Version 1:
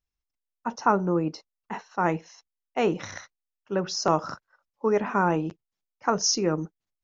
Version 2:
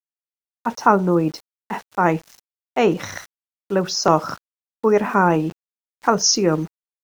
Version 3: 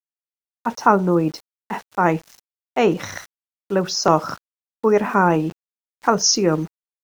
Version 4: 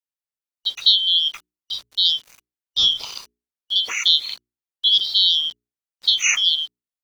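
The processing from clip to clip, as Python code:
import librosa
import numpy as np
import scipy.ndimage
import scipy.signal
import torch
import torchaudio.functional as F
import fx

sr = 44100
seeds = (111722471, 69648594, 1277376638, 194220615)

y1 = np.where(np.abs(x) >= 10.0 ** (-45.5 / 20.0), x, 0.0)
y1 = F.gain(torch.from_numpy(y1), 7.0).numpy()
y2 = y1
y3 = fx.band_shuffle(y2, sr, order='3412')
y3 = fx.hum_notches(y3, sr, base_hz=60, count=7)
y3 = F.gain(torch.from_numpy(y3), -1.0).numpy()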